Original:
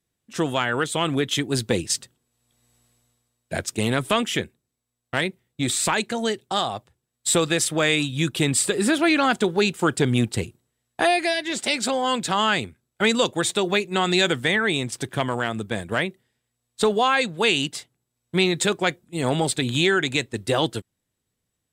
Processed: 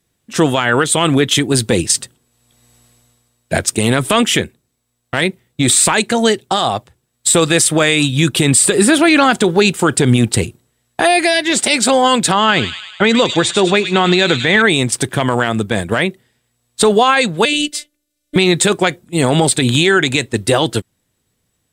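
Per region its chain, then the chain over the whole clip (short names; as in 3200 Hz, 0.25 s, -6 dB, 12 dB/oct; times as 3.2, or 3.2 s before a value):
12.32–14.62 air absorption 99 m + thin delay 0.102 s, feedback 59%, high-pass 3200 Hz, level -5 dB
17.45–18.36 fixed phaser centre 390 Hz, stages 4 + robotiser 296 Hz + Doppler distortion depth 0.14 ms
whole clip: dynamic EQ 9000 Hz, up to +7 dB, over -45 dBFS, Q 3.3; maximiser +13 dB; gain -1 dB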